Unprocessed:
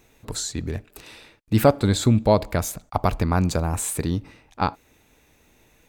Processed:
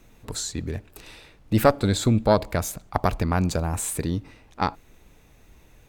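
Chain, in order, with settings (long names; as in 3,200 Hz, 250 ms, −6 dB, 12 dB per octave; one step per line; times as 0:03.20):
background noise brown −50 dBFS
harmonic generator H 2 −10 dB, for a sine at −3.5 dBFS
level −1.5 dB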